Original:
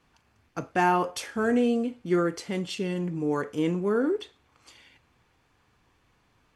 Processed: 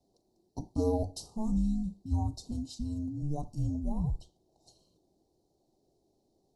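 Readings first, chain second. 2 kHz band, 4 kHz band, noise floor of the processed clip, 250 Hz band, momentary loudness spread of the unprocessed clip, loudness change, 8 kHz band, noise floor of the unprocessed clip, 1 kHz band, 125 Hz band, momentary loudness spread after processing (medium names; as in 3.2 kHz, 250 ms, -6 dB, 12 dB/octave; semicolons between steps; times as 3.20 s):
under -40 dB, -11.0 dB, -75 dBFS, -6.5 dB, 9 LU, -7.0 dB, -7.0 dB, -67 dBFS, -16.0 dB, +1.5 dB, 9 LU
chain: frequency shift -440 Hz; Chebyshev band-stop 780–4300 Hz, order 3; trim -5 dB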